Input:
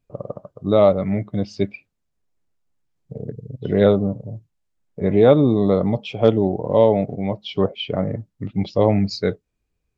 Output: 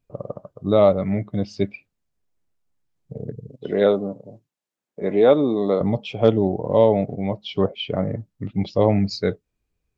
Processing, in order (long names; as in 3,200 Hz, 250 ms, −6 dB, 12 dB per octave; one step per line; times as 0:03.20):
0:03.49–0:05.81: high-pass filter 270 Hz 12 dB per octave
level −1 dB